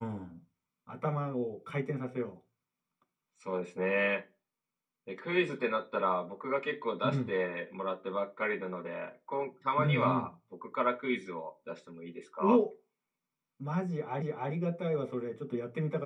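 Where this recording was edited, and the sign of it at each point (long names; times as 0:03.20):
0:14.22: the same again, the last 0.3 s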